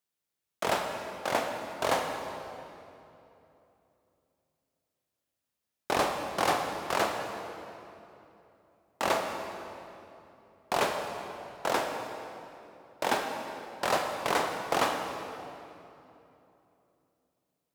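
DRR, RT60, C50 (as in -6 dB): 3.0 dB, 3.0 s, 4.0 dB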